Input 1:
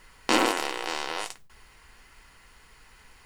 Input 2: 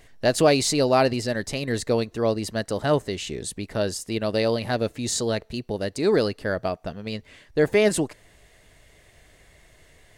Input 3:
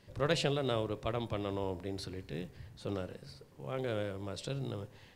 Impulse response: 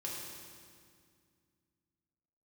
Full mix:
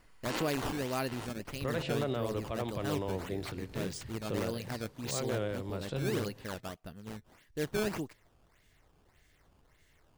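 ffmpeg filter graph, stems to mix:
-filter_complex "[0:a]volume=-13.5dB[a];[1:a]equalizer=f=620:t=o:w=1.2:g=-7.5,acrusher=samples=13:mix=1:aa=0.000001:lfo=1:lforange=20.8:lforate=1.7,volume=-11dB,asplit=2[b][c];[2:a]acrossover=split=2700[d][e];[e]acompressor=threshold=-50dB:ratio=4:attack=1:release=60[f];[d][f]amix=inputs=2:normalize=0,alimiter=level_in=1.5dB:limit=-24dB:level=0:latency=1:release=111,volume=-1.5dB,adelay=1450,volume=2dB[g];[c]apad=whole_len=143517[h];[a][h]sidechaincompress=threshold=-35dB:ratio=8:attack=16:release=166[i];[i][b][g]amix=inputs=3:normalize=0"

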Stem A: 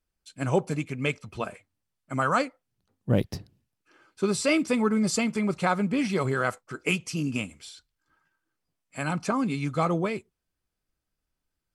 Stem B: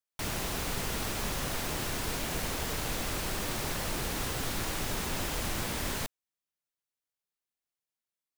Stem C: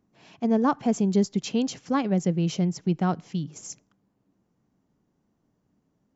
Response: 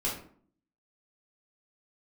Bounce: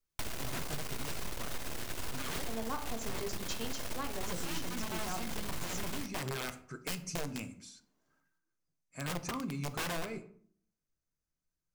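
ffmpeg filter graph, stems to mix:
-filter_complex "[0:a]equalizer=f=160:t=o:w=0.33:g=9,equalizer=f=800:t=o:w=0.33:g=-3,equalizer=f=3.15k:t=o:w=0.33:g=-10,equalizer=f=6.3k:t=o:w=0.33:g=9,aeval=exprs='(mod(8.41*val(0)+1,2)-1)/8.41':c=same,volume=-10.5dB,asplit=2[a][b];[b]volume=-14dB[c];[1:a]aeval=exprs='max(val(0),0)':c=same,volume=3dB,asplit=2[d][e];[e]volume=-15.5dB[f];[2:a]highpass=f=1.1k:p=1,adelay=2050,volume=-1dB,asplit=2[g][h];[h]volume=-10.5dB[i];[3:a]atrim=start_sample=2205[j];[c][f][i]amix=inputs=3:normalize=0[k];[k][j]afir=irnorm=-1:irlink=0[l];[a][d][g][l]amix=inputs=4:normalize=0,acompressor=threshold=-34dB:ratio=4"

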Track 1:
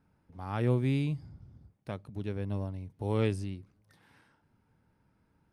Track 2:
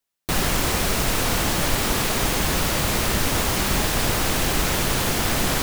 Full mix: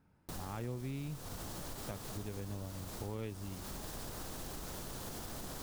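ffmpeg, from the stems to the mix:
-filter_complex "[0:a]volume=0dB[a];[1:a]equalizer=f=2.3k:w=1.2:g=-9,alimiter=limit=-15.5dB:level=0:latency=1:release=90,volume=-16.5dB[b];[a][b]amix=inputs=2:normalize=0,acompressor=threshold=-40dB:ratio=4"

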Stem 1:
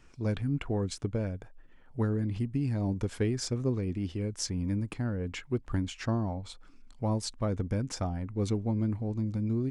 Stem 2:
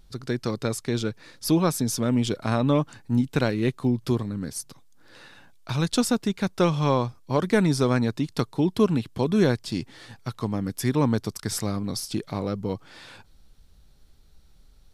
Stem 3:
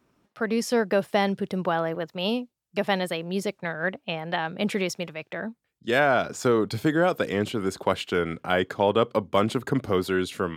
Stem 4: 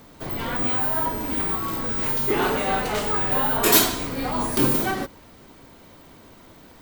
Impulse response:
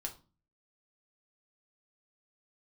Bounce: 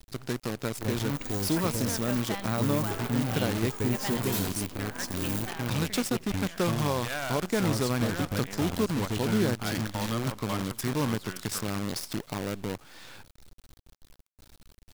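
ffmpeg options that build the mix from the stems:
-filter_complex "[0:a]adelay=600,volume=-3dB,asplit=2[a][b];[b]volume=-21dB[c];[1:a]agate=range=-33dB:threshold=-48dB:ratio=3:detection=peak,acompressor=threshold=-43dB:ratio=1.5,volume=2dB[d];[2:a]equalizer=f=400:w=1.2:g=-12,adelay=1150,volume=-10dB,asplit=2[e][f];[f]volume=-15dB[g];[3:a]equalizer=f=290:t=o:w=1.7:g=4.5,adelay=600,volume=-18dB,asplit=2[h][i];[i]volume=-10dB[j];[c][g][j]amix=inputs=3:normalize=0,aecho=0:1:81|162|243|324|405|486:1|0.44|0.194|0.0852|0.0375|0.0165[k];[a][d][e][h][k]amix=inputs=5:normalize=0,acrusher=bits=6:dc=4:mix=0:aa=0.000001"

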